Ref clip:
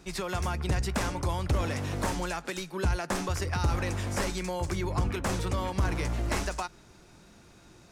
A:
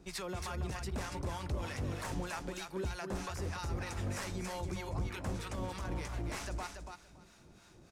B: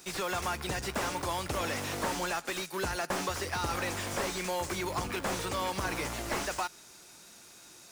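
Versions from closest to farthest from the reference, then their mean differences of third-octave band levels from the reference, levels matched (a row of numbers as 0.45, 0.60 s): A, B; 4.0, 5.5 dB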